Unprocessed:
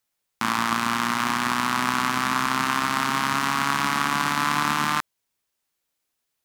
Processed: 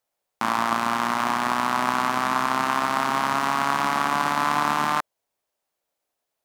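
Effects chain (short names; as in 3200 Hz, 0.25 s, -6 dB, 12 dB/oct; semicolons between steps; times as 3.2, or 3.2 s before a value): bell 630 Hz +13 dB 1.4 oct; gain -4.5 dB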